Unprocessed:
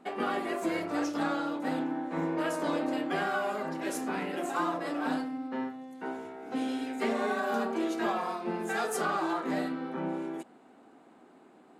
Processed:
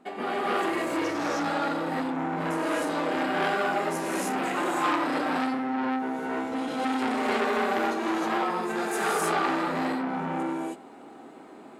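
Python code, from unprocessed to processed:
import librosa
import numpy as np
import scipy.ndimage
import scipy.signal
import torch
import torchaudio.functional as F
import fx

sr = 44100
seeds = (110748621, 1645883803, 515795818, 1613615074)

y = fx.rider(x, sr, range_db=10, speed_s=2.0)
y = fx.rev_gated(y, sr, seeds[0], gate_ms=340, shape='rising', drr_db=-7.0)
y = fx.transformer_sat(y, sr, knee_hz=1700.0)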